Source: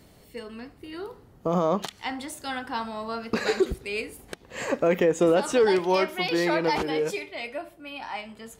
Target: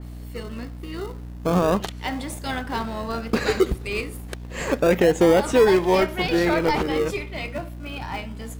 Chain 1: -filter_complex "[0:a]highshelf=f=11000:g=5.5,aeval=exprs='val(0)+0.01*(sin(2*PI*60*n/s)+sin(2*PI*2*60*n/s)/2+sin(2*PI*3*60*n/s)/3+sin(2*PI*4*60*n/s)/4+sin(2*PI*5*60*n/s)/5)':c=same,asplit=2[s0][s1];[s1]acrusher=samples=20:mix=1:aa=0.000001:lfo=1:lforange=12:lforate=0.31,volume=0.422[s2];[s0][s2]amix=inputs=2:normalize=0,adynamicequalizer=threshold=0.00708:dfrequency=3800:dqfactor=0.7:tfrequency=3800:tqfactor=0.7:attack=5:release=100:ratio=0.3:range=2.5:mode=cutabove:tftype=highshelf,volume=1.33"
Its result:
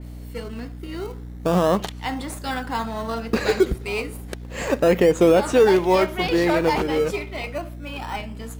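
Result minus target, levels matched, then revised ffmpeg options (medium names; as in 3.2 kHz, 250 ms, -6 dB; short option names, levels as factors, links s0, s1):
decimation with a swept rate: distortion -10 dB
-filter_complex "[0:a]highshelf=f=11000:g=5.5,aeval=exprs='val(0)+0.01*(sin(2*PI*60*n/s)+sin(2*PI*2*60*n/s)/2+sin(2*PI*3*60*n/s)/3+sin(2*PI*4*60*n/s)/4+sin(2*PI*5*60*n/s)/5)':c=same,asplit=2[s0][s1];[s1]acrusher=samples=43:mix=1:aa=0.000001:lfo=1:lforange=25.8:lforate=0.31,volume=0.422[s2];[s0][s2]amix=inputs=2:normalize=0,adynamicequalizer=threshold=0.00708:dfrequency=3800:dqfactor=0.7:tfrequency=3800:tqfactor=0.7:attack=5:release=100:ratio=0.3:range=2.5:mode=cutabove:tftype=highshelf,volume=1.33"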